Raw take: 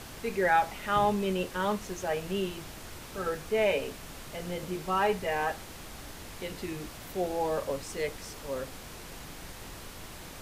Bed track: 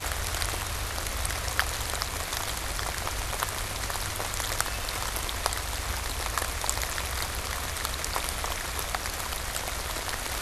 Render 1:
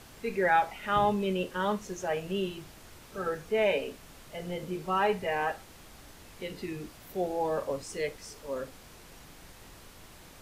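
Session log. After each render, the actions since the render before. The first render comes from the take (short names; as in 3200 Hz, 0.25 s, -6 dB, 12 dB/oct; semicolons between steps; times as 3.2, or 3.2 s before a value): noise print and reduce 7 dB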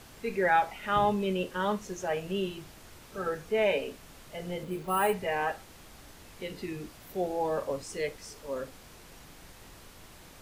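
4.63–5.14 careless resampling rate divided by 4×, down filtered, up hold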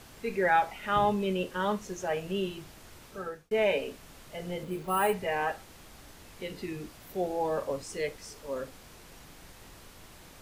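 3.06–3.51 fade out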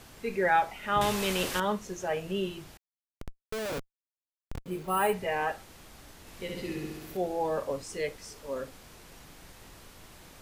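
1.01–1.6 spectral compressor 2:1; 2.77–4.66 Schmitt trigger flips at -28 dBFS; 6.2–7.17 flutter echo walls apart 11.3 m, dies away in 1.2 s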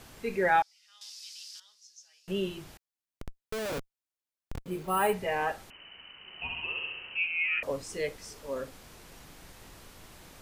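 0.62–2.28 ladder band-pass 5400 Hz, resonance 70%; 5.7–7.63 inverted band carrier 3000 Hz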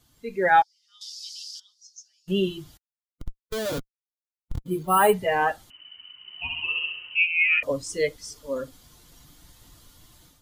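per-bin expansion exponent 1.5; AGC gain up to 10 dB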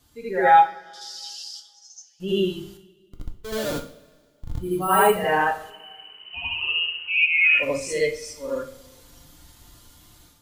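reverse echo 78 ms -6 dB; two-slope reverb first 0.43 s, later 1.8 s, from -18 dB, DRR 4 dB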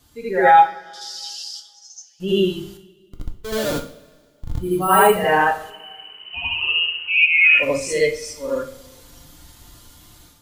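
gain +4.5 dB; limiter -3 dBFS, peak gain reduction 2.5 dB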